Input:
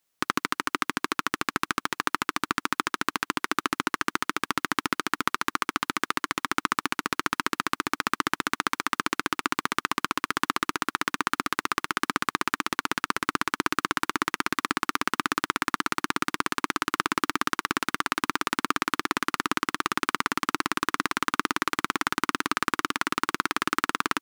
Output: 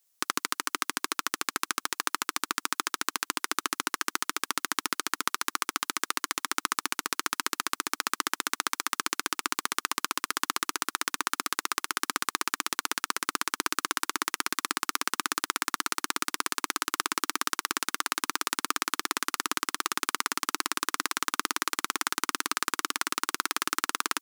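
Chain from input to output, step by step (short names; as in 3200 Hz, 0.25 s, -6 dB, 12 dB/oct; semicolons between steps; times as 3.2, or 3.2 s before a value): tone controls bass -11 dB, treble +11 dB; gain -4.5 dB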